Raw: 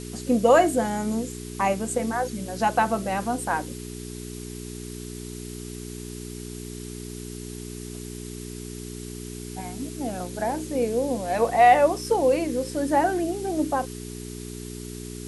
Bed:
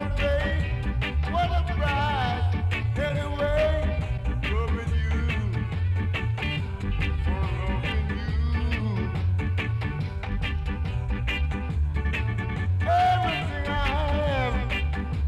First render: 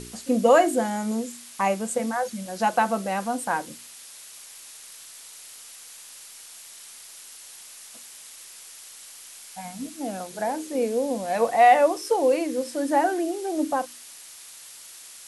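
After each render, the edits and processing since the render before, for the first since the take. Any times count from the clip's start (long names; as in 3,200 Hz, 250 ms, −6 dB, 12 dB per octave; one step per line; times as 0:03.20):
hum removal 60 Hz, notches 7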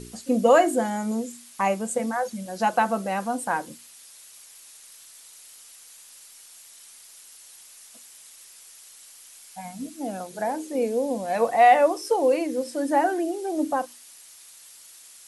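broadband denoise 6 dB, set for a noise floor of −45 dBFS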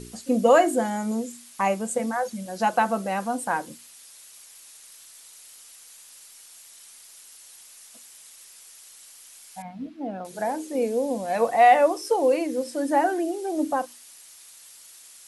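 0:09.62–0:10.25: high-frequency loss of the air 350 metres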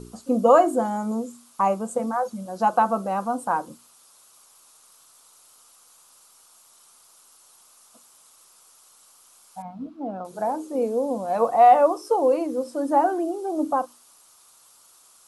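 high shelf with overshoot 1,500 Hz −6.5 dB, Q 3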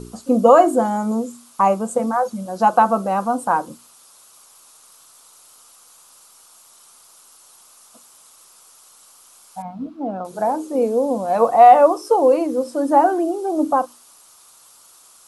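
level +5.5 dB
brickwall limiter −1 dBFS, peak gain reduction 3 dB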